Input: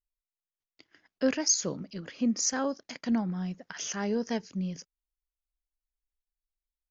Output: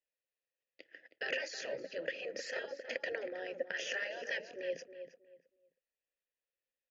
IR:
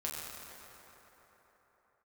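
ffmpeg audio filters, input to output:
-filter_complex "[0:a]afftfilt=real='re*lt(hypot(re,im),0.0631)':imag='im*lt(hypot(re,im),0.0631)':win_size=1024:overlap=0.75,asplit=3[link_01][link_02][link_03];[link_01]bandpass=frequency=530:width_type=q:width=8,volume=0dB[link_04];[link_02]bandpass=frequency=1840:width_type=q:width=8,volume=-6dB[link_05];[link_03]bandpass=frequency=2480:width_type=q:width=8,volume=-9dB[link_06];[link_04][link_05][link_06]amix=inputs=3:normalize=0,asplit=2[link_07][link_08];[link_08]adelay=318,lowpass=frequency=2100:poles=1,volume=-9.5dB,asplit=2[link_09][link_10];[link_10]adelay=318,lowpass=frequency=2100:poles=1,volume=0.24,asplit=2[link_11][link_12];[link_12]adelay=318,lowpass=frequency=2100:poles=1,volume=0.24[link_13];[link_07][link_09][link_11][link_13]amix=inputs=4:normalize=0,volume=16dB"

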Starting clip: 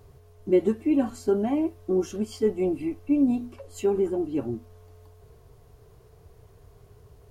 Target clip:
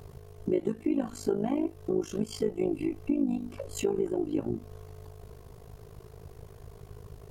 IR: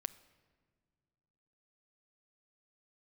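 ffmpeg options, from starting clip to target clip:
-af "acompressor=threshold=-34dB:ratio=3,tremolo=f=52:d=0.857,volume=8.5dB"

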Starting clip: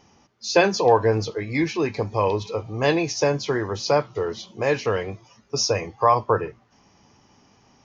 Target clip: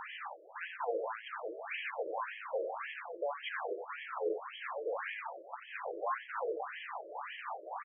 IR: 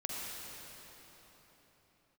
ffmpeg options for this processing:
-filter_complex "[0:a]acrossover=split=420[link_01][link_02];[link_02]acompressor=threshold=-29dB:ratio=6[link_03];[link_01][link_03]amix=inputs=2:normalize=0,equalizer=frequency=400:width_type=o:width=0.36:gain=-12.5,areverse,acompressor=threshold=-34dB:ratio=10,areverse,aeval=exprs='clip(val(0),-1,0.00473)':channel_layout=same,asplit=2[link_04][link_05];[link_05]highpass=frequency=720:poles=1,volume=34dB,asoftclip=type=tanh:threshold=-27.5dB[link_06];[link_04][link_06]amix=inputs=2:normalize=0,lowpass=frequency=1800:poles=1,volume=-6dB,asplit=2[link_07][link_08];[link_08]aecho=0:1:89|178|267|356:0.562|0.163|0.0473|0.0137[link_09];[link_07][link_09]amix=inputs=2:normalize=0,afftfilt=real='re*between(b*sr/1024,450*pow(2400/450,0.5+0.5*sin(2*PI*1.8*pts/sr))/1.41,450*pow(2400/450,0.5+0.5*sin(2*PI*1.8*pts/sr))*1.41)':imag='im*between(b*sr/1024,450*pow(2400/450,0.5+0.5*sin(2*PI*1.8*pts/sr))/1.41,450*pow(2400/450,0.5+0.5*sin(2*PI*1.8*pts/sr))*1.41)':win_size=1024:overlap=0.75,volume=2.5dB"

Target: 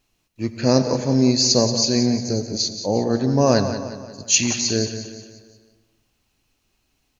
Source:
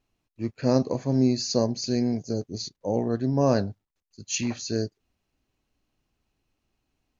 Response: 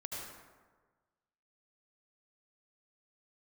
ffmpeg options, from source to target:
-filter_complex "[0:a]highshelf=frequency=2200:gain=9.5,aecho=1:1:178|356|534|712|890:0.299|0.14|0.0659|0.031|0.0146,asplit=2[link_01][link_02];[1:a]atrim=start_sample=2205[link_03];[link_02][link_03]afir=irnorm=-1:irlink=0,volume=-9dB[link_04];[link_01][link_04]amix=inputs=2:normalize=0,volume=3dB"

